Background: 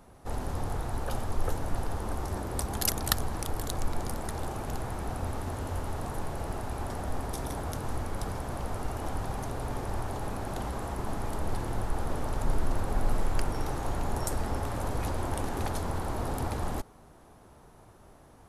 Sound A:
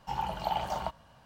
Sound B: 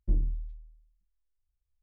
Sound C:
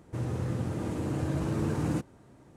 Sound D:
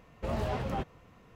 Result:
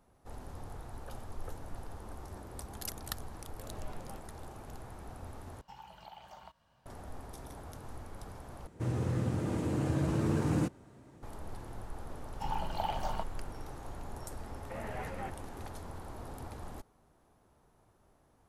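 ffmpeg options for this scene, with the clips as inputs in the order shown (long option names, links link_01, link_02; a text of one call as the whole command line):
ffmpeg -i bed.wav -i cue0.wav -i cue1.wav -i cue2.wav -i cue3.wav -filter_complex "[4:a]asplit=2[link_01][link_02];[1:a]asplit=2[link_03][link_04];[0:a]volume=-12.5dB[link_05];[link_03]acrossover=split=1100|3500[link_06][link_07][link_08];[link_06]acompressor=threshold=-43dB:ratio=4[link_09];[link_07]acompressor=threshold=-45dB:ratio=4[link_10];[link_08]acompressor=threshold=-56dB:ratio=4[link_11];[link_09][link_10][link_11]amix=inputs=3:normalize=0[link_12];[link_02]highpass=240,equalizer=frequency=260:width_type=q:width=4:gain=-8,equalizer=frequency=380:width_type=q:width=4:gain=-8,equalizer=frequency=620:width_type=q:width=4:gain=-5,equalizer=frequency=1100:width_type=q:width=4:gain=-9,equalizer=frequency=1900:width_type=q:width=4:gain=5,lowpass=frequency=2500:width=0.5412,lowpass=frequency=2500:width=1.3066[link_13];[link_05]asplit=3[link_14][link_15][link_16];[link_14]atrim=end=5.614[link_17];[link_12]atrim=end=1.25,asetpts=PTS-STARTPTS,volume=-11dB[link_18];[link_15]atrim=start=6.856:end=8.674[link_19];[3:a]atrim=end=2.56,asetpts=PTS-STARTPTS,volume=-0.5dB[link_20];[link_16]atrim=start=11.226[link_21];[link_01]atrim=end=1.35,asetpts=PTS-STARTPTS,volume=-16.5dB,afade=type=in:duration=0.004:curve=hsin,afade=type=out:start_time=1.346:duration=0.004:curve=hsin,adelay=3360[link_22];[link_04]atrim=end=1.25,asetpts=PTS-STARTPTS,volume=-4dB,afade=type=in:duration=0.004:curve=hsin,afade=type=out:start_time=1.246:duration=0.004:curve=hsin,adelay=12330[link_23];[link_13]atrim=end=1.35,asetpts=PTS-STARTPTS,volume=-3dB,afade=type=in:duration=0.004:curve=hsin,afade=type=out:start_time=1.346:duration=0.004:curve=hsin,adelay=14470[link_24];[link_17][link_18]acrossfade=duration=0.004:curve1=hsin:curve2=hsin[link_25];[link_25][link_19]acrossfade=duration=0.004:curve1=hsin:curve2=hsin[link_26];[link_26][link_20]acrossfade=duration=0.004:curve1=hsin:curve2=hsin[link_27];[link_27][link_21]acrossfade=duration=0.004:curve1=hsin:curve2=hsin[link_28];[link_28][link_22][link_23][link_24]amix=inputs=4:normalize=0" out.wav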